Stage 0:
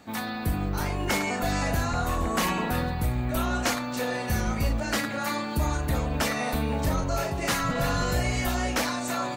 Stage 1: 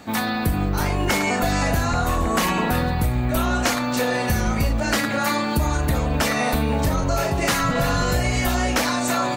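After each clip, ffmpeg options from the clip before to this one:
-af "acompressor=threshold=-26dB:ratio=6,volume=9dB"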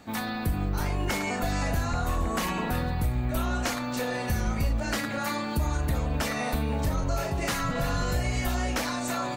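-af "lowshelf=f=81:g=6.5,volume=-8.5dB"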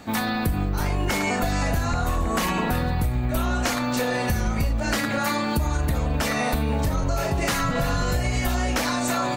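-af "acompressor=threshold=-27dB:ratio=6,volume=7.5dB"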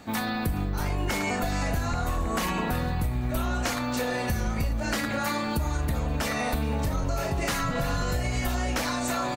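-af "aecho=1:1:419|838|1257|1676:0.1|0.052|0.027|0.0141,volume=-4dB"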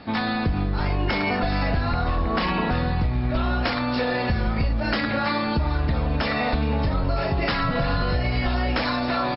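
-af "volume=5dB" -ar 12000 -c:a libmp3lame -b:a 64k

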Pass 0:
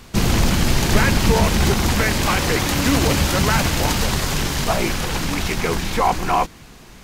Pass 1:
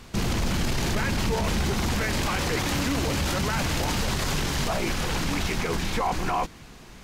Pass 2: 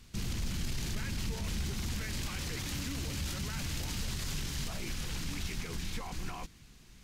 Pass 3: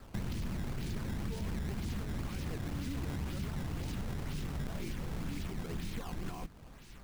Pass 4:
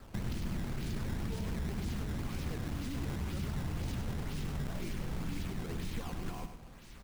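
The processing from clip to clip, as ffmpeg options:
-af "highshelf=f=11k:g=-6.5,alimiter=limit=-14dB:level=0:latency=1:release=17,acontrast=36,volume=-8.5dB"
-af "equalizer=f=710:t=o:w=2.7:g=-13,volume=-7.5dB"
-filter_complex "[0:a]acrossover=split=110|620|5000[a][b][c][d];[a]acompressor=threshold=-42dB:ratio=4[e];[b]acompressor=threshold=-41dB:ratio=4[f];[c]acompressor=threshold=-55dB:ratio=4[g];[d]acompressor=threshold=-60dB:ratio=4[h];[e][f][g][h]amix=inputs=4:normalize=0,acrusher=samples=14:mix=1:aa=0.000001:lfo=1:lforange=22.4:lforate=2,volume=3.5dB"
-af "aecho=1:1:101|202|303|404:0.398|0.123|0.0383|0.0119"

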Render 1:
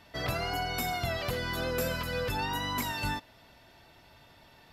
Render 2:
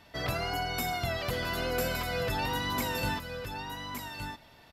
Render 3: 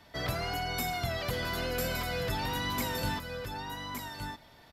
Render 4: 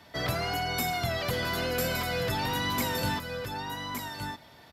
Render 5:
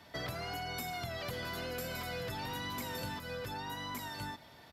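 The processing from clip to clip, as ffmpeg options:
-af "aecho=1:1:1166:0.473"
-filter_complex "[0:a]bandreject=f=2.7k:w=13,acrossover=split=280|2100[a][b][c];[b]volume=34dB,asoftclip=hard,volume=-34dB[d];[a][d][c]amix=inputs=3:normalize=0"
-af "highpass=73,volume=3.5dB"
-af "acompressor=threshold=-34dB:ratio=6,volume=-3dB"

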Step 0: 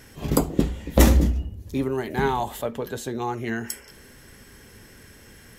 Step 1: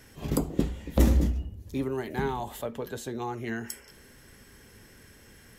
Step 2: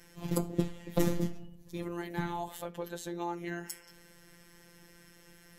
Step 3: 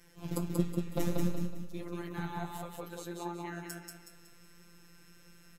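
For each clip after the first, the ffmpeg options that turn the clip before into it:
-filter_complex "[0:a]acrossover=split=450[a][b];[b]acompressor=threshold=-26dB:ratio=6[c];[a][c]amix=inputs=2:normalize=0,volume=-5dB"
-af "afftfilt=real='hypot(re,im)*cos(PI*b)':imag='0':win_size=1024:overlap=0.75"
-filter_complex "[0:a]flanger=delay=4.9:depth=8.1:regen=56:speed=1.5:shape=sinusoidal,asplit=2[a][b];[b]aecho=0:1:185|370|555|740|925:0.708|0.276|0.108|0.042|0.0164[c];[a][c]amix=inputs=2:normalize=0"

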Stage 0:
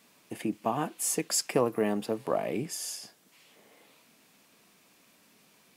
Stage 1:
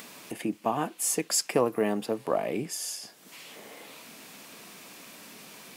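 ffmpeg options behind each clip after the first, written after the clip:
-af "lowshelf=f=110:g=-8,acompressor=mode=upward:threshold=-37dB:ratio=2.5,volume=2dB"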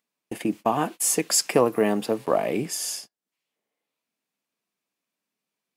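-af "agate=range=-43dB:threshold=-39dB:ratio=16:detection=peak,volume=5dB"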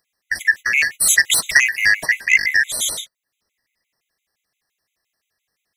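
-af "afftfilt=real='real(if(lt(b,272),68*(eq(floor(b/68),0)*2+eq(floor(b/68),1)*0+eq(floor(b/68),2)*3+eq(floor(b/68),3)*1)+mod(b,68),b),0)':imag='imag(if(lt(b,272),68*(eq(floor(b/68),0)*2+eq(floor(b/68),1)*0+eq(floor(b/68),2)*3+eq(floor(b/68),3)*1)+mod(b,68),b),0)':win_size=2048:overlap=0.75,aeval=exprs='0.562*sin(PI/2*2*val(0)/0.562)':c=same,afftfilt=real='re*gt(sin(2*PI*5.8*pts/sr)*(1-2*mod(floor(b*sr/1024/2000),2)),0)':imag='im*gt(sin(2*PI*5.8*pts/sr)*(1-2*mod(floor(b*sr/1024/2000),2)),0)':win_size=1024:overlap=0.75,volume=2dB"

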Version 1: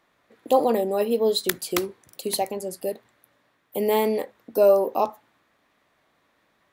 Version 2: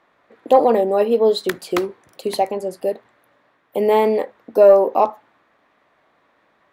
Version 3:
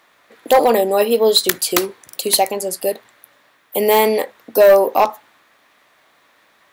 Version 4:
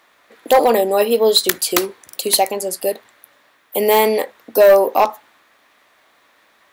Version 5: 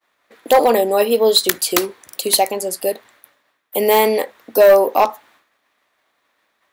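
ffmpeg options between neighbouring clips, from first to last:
-filter_complex "[0:a]asplit=2[a][b];[b]highpass=f=720:p=1,volume=10dB,asoftclip=type=tanh:threshold=-3dB[c];[a][c]amix=inputs=2:normalize=0,lowpass=f=1k:p=1,volume=-6dB,volume=6dB"
-af "crystalizer=i=7.5:c=0,volume=5dB,asoftclip=hard,volume=-5dB"
-af "equalizer=f=140:w=2.4:g=-5.5"
-af "agate=range=-33dB:threshold=-47dB:ratio=3:detection=peak"

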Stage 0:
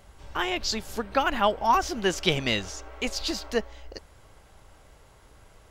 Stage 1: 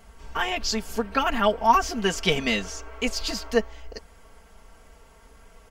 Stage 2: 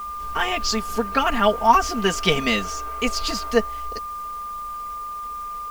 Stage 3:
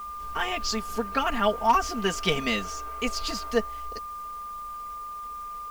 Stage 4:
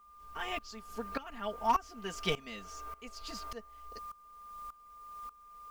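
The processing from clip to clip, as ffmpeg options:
-af "equalizer=f=3.8k:t=o:w=0.21:g=-6,aecho=1:1:4.4:0.81"
-af "aeval=exprs='val(0)+0.0251*sin(2*PI*1200*n/s)':c=same,acrusher=bits=7:mix=0:aa=0.000001,volume=3dB"
-af "asoftclip=type=hard:threshold=-6.5dB,volume=-5.5dB"
-af "aeval=exprs='val(0)*pow(10,-18*if(lt(mod(-1.7*n/s,1),2*abs(-1.7)/1000),1-mod(-1.7*n/s,1)/(2*abs(-1.7)/1000),(mod(-1.7*n/s,1)-2*abs(-1.7)/1000)/(1-2*abs(-1.7)/1000))/20)':c=same,volume=-5.5dB"

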